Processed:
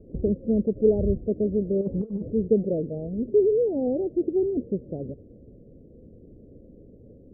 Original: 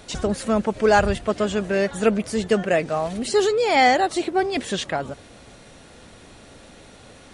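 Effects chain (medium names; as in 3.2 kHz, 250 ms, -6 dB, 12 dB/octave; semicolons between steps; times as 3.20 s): steep low-pass 510 Hz 48 dB/octave; 1.81–2.33 s: compressor with a negative ratio -27 dBFS, ratio -0.5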